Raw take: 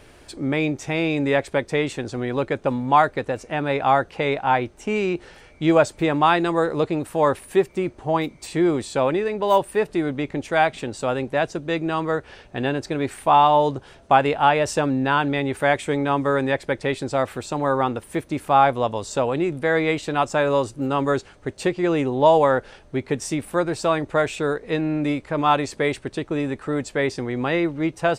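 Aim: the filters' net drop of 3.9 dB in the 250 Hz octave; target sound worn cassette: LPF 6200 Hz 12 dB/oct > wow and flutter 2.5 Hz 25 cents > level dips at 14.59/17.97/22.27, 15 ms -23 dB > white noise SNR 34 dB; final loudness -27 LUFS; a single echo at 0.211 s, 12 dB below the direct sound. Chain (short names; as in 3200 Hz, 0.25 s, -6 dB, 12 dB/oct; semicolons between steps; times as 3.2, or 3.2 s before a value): LPF 6200 Hz 12 dB/oct; bell 250 Hz -5.5 dB; echo 0.211 s -12 dB; wow and flutter 2.5 Hz 25 cents; level dips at 14.59/17.97/22.27, 15 ms -23 dB; white noise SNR 34 dB; gain -4 dB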